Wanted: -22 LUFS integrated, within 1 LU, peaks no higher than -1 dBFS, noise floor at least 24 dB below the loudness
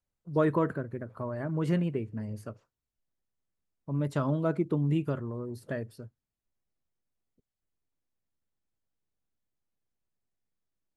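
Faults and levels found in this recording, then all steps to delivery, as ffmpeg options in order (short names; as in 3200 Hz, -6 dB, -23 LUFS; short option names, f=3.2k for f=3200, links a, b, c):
loudness -31.5 LUFS; peak -13.5 dBFS; loudness target -22.0 LUFS
-> -af "volume=9.5dB"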